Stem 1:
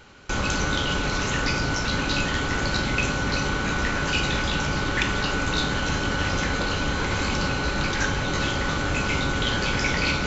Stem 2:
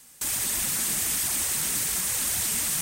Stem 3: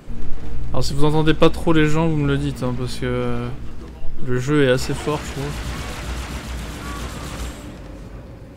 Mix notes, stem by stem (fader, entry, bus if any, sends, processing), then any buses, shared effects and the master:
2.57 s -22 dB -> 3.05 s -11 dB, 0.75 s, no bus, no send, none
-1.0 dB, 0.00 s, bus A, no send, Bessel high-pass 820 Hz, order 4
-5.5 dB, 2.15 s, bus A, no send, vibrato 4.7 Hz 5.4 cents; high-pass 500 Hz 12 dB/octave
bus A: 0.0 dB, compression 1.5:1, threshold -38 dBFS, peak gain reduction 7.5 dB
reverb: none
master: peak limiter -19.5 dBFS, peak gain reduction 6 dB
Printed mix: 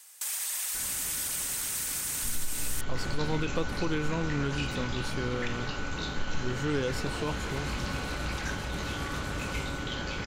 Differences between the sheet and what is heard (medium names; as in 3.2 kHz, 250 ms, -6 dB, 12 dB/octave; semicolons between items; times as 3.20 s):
stem 1: entry 0.75 s -> 0.45 s; stem 3: missing high-pass 500 Hz 12 dB/octave